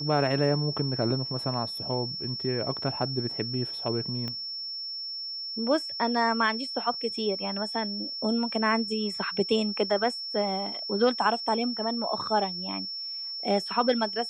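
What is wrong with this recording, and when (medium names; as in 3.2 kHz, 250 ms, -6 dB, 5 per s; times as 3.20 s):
whine 5.4 kHz -33 dBFS
4.28 s: pop -22 dBFS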